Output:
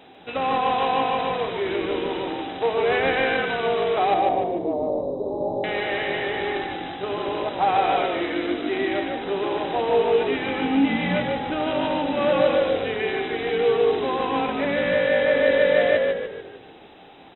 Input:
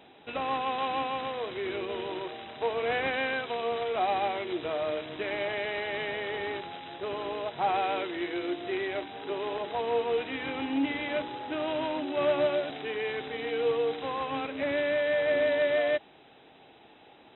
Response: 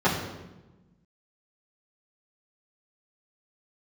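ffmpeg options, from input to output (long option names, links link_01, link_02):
-filter_complex "[0:a]asettb=1/sr,asplit=3[link_01][link_02][link_03];[link_01]atrim=end=4.144[link_04];[link_02]atrim=start=4.14:end=5.64,asetpts=PTS-STARTPTS,afade=type=in:duration=0.004:curve=qsin,afade=type=out:start_time=1.496:duration=0.004:curve=qsin,asuperstop=centerf=2200:order=12:qfactor=0.56[link_05];[link_03]atrim=start=5.636[link_06];[link_04][link_05]acrossfade=duration=0.004:curve1=hsin:curve2=qsin[link_07];[link_07][link_06]acrossfade=duration=0.004:curve1=qsin:curve2=hsin,asplit=7[link_08][link_09][link_10][link_11][link_12][link_13][link_14];[link_09]adelay=148,afreqshift=-47,volume=-4dB[link_15];[link_10]adelay=296,afreqshift=-94,volume=-11.1dB[link_16];[link_11]adelay=444,afreqshift=-141,volume=-18.3dB[link_17];[link_12]adelay=592,afreqshift=-188,volume=-25.4dB[link_18];[link_13]adelay=740,afreqshift=-235,volume=-32.5dB[link_19];[link_14]adelay=888,afreqshift=-282,volume=-39.7dB[link_20];[link_08][link_15][link_16][link_17][link_18][link_19][link_20]amix=inputs=7:normalize=0,asplit=2[link_21][link_22];[1:a]atrim=start_sample=2205[link_23];[link_22][link_23]afir=irnorm=-1:irlink=0,volume=-26dB[link_24];[link_21][link_24]amix=inputs=2:normalize=0,volume=5dB"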